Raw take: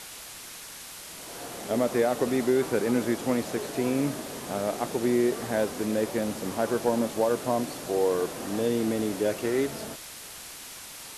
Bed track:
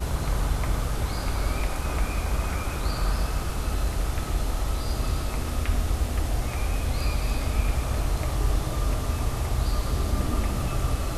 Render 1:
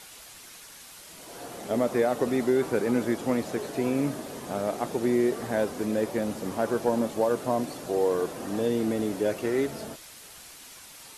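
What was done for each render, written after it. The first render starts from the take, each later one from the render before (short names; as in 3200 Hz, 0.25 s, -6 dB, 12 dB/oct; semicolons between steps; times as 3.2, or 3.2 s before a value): denoiser 6 dB, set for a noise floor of -43 dBFS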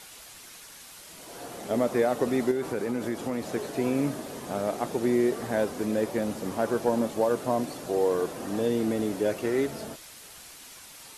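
2.51–3.48 compressor 3:1, threshold -26 dBFS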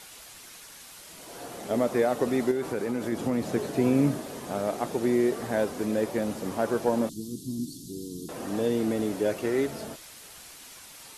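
3.12–4.18 bell 140 Hz +6.5 dB 2.5 oct; 7.09–8.29 inverse Chebyshev band-stop 520–2300 Hz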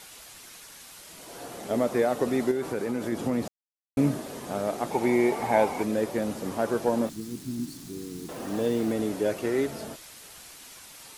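3.48–3.97 mute; 4.9–5.82 small resonant body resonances 860/2200 Hz, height 14 dB -> 18 dB, ringing for 20 ms; 7.06–8.92 level-crossing sampler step -44.5 dBFS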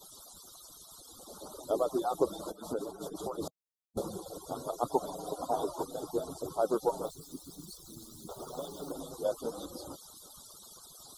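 median-filter separation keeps percussive; elliptic band-stop 1300–3500 Hz, stop band 40 dB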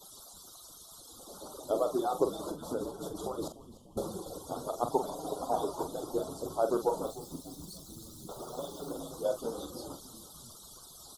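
doubler 44 ms -8 dB; frequency-shifting echo 0.295 s, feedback 63%, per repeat -100 Hz, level -17 dB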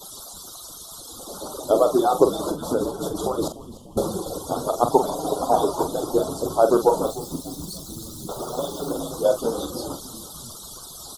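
gain +12 dB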